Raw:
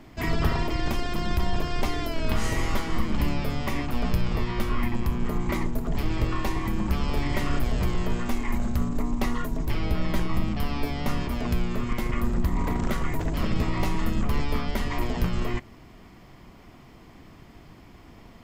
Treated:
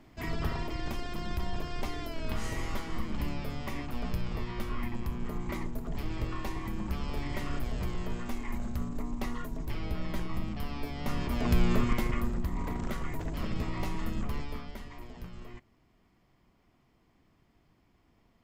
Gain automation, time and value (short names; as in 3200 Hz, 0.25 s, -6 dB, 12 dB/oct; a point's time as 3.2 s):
10.92 s -8.5 dB
11.72 s +3 dB
12.41 s -8 dB
14.24 s -8 dB
14.98 s -18.5 dB